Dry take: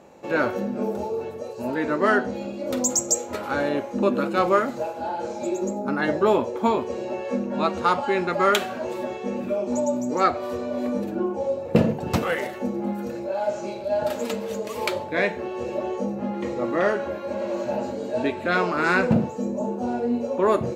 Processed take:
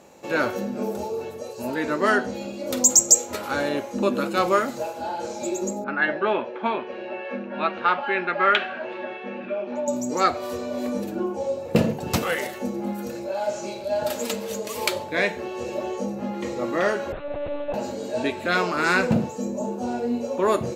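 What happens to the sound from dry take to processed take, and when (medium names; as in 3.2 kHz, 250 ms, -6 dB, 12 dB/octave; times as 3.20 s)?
5.84–9.88 s: cabinet simulation 240–3100 Hz, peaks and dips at 270 Hz -5 dB, 460 Hz -6 dB, 1 kHz -3 dB, 1.6 kHz +7 dB, 2.6 kHz +3 dB
17.12–17.74 s: monotone LPC vocoder at 8 kHz 290 Hz
whole clip: treble shelf 3.3 kHz +11 dB; trim -1.5 dB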